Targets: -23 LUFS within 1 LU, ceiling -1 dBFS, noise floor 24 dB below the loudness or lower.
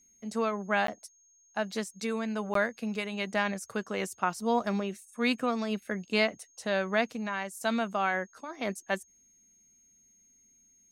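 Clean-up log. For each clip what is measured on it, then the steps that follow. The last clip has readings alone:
dropouts 2; longest dropout 13 ms; steady tone 6.5 kHz; tone level -61 dBFS; loudness -31.5 LUFS; peak level -11.5 dBFS; loudness target -23.0 LUFS
-> interpolate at 0.87/2.54 s, 13 ms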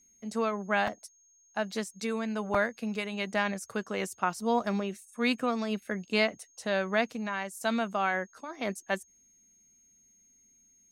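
dropouts 0; steady tone 6.5 kHz; tone level -61 dBFS
-> band-stop 6.5 kHz, Q 30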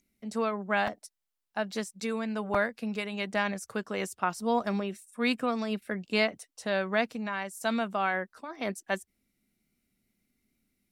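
steady tone not found; loudness -31.5 LUFS; peak level -11.5 dBFS; loudness target -23.0 LUFS
-> trim +8.5 dB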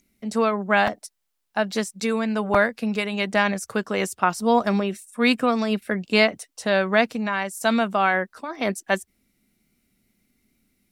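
loudness -23.0 LUFS; peak level -3.0 dBFS; noise floor -76 dBFS

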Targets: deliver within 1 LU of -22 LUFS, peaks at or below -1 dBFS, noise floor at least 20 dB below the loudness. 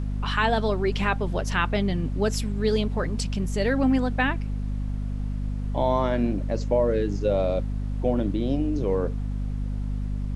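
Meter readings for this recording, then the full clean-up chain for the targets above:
hum 50 Hz; highest harmonic 250 Hz; hum level -25 dBFS; noise floor -29 dBFS; noise floor target -46 dBFS; loudness -26.0 LUFS; peak level -8.0 dBFS; loudness target -22.0 LUFS
-> de-hum 50 Hz, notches 5; noise print and reduce 17 dB; trim +4 dB

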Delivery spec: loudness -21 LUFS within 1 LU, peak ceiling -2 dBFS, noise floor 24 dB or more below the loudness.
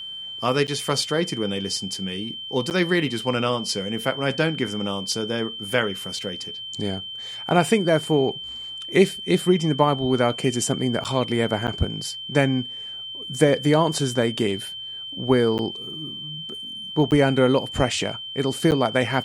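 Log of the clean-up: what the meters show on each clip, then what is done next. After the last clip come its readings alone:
dropouts 7; longest dropout 9.1 ms; steady tone 3.1 kHz; tone level -32 dBFS; loudness -23.0 LUFS; peak level -2.5 dBFS; loudness target -21.0 LUFS
-> interpolate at 0.67/2.70/11.04/11.67/15.58/17.11/18.71 s, 9.1 ms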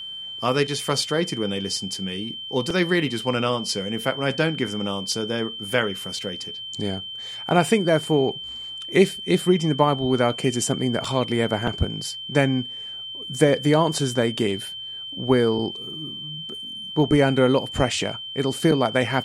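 dropouts 0; steady tone 3.1 kHz; tone level -32 dBFS
-> band-stop 3.1 kHz, Q 30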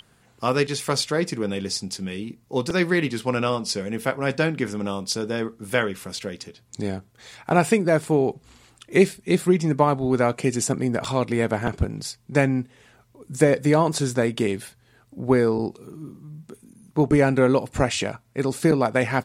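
steady tone not found; loudness -23.0 LUFS; peak level -2.5 dBFS; loudness target -21.0 LUFS
-> trim +2 dB; peak limiter -2 dBFS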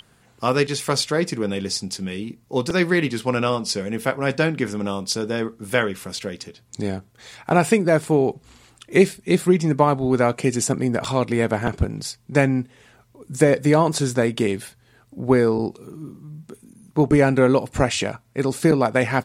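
loudness -21.0 LUFS; peak level -2.0 dBFS; noise floor -57 dBFS

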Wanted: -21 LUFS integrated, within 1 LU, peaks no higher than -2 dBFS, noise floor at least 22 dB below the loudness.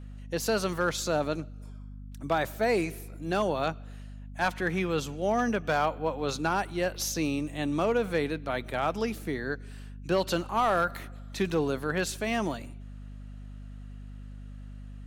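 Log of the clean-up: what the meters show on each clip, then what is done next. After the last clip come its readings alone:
clipped samples 0.2%; clipping level -17.5 dBFS; hum 50 Hz; highest harmonic 250 Hz; hum level -40 dBFS; loudness -29.5 LUFS; peak level -17.5 dBFS; loudness target -21.0 LUFS
-> clip repair -17.5 dBFS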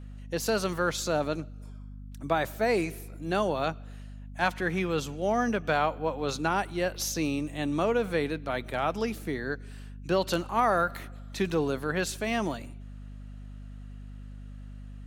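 clipped samples 0.0%; hum 50 Hz; highest harmonic 250 Hz; hum level -40 dBFS
-> de-hum 50 Hz, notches 5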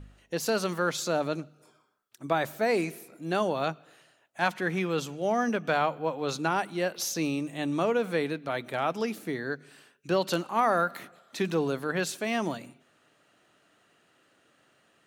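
hum not found; loudness -29.5 LUFS; peak level -11.0 dBFS; loudness target -21.0 LUFS
-> trim +8.5 dB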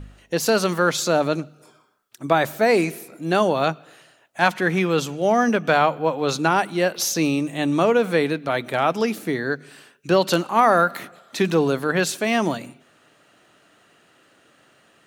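loudness -21.0 LUFS; peak level -2.5 dBFS; noise floor -58 dBFS

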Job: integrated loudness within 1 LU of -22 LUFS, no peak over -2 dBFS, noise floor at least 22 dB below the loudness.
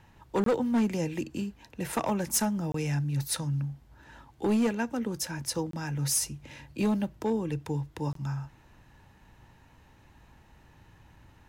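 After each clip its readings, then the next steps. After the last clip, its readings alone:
clipped samples 0.8%; clipping level -21.0 dBFS; dropouts 4; longest dropout 23 ms; loudness -30.5 LUFS; peak level -21.0 dBFS; loudness target -22.0 LUFS
-> clip repair -21 dBFS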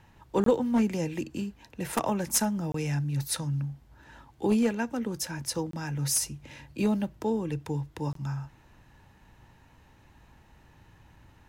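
clipped samples 0.0%; dropouts 4; longest dropout 23 ms
-> interpolate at 0.44/2.72/5.71/8.13 s, 23 ms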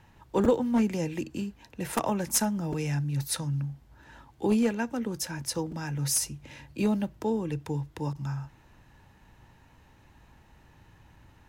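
dropouts 0; loudness -29.5 LUFS; peak level -12.0 dBFS; loudness target -22.0 LUFS
-> trim +7.5 dB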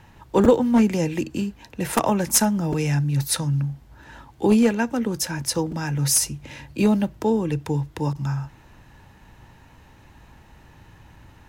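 loudness -22.0 LUFS; peak level -4.5 dBFS; noise floor -51 dBFS

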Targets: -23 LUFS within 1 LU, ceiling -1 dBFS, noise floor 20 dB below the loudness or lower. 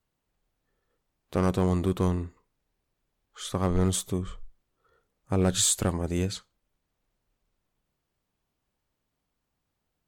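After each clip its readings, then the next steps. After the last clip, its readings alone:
clipped samples 0.2%; clipping level -16.0 dBFS; loudness -27.0 LUFS; peak level -16.0 dBFS; loudness target -23.0 LUFS
-> clip repair -16 dBFS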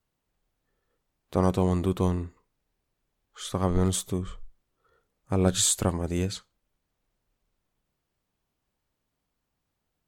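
clipped samples 0.0%; loudness -26.5 LUFS; peak level -8.5 dBFS; loudness target -23.0 LUFS
-> trim +3.5 dB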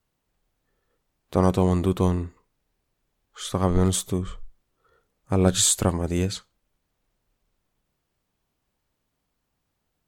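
loudness -23.0 LUFS; peak level -5.0 dBFS; noise floor -78 dBFS

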